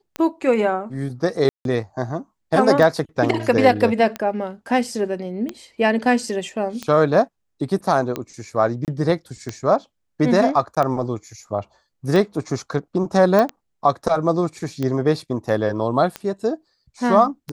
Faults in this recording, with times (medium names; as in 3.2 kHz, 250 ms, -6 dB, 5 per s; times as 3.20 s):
tick 45 rpm -12 dBFS
1.49–1.65 s: dropout 162 ms
8.85–8.88 s: dropout 28 ms
10.75–10.77 s: dropout 16 ms
13.39 s: pop -8 dBFS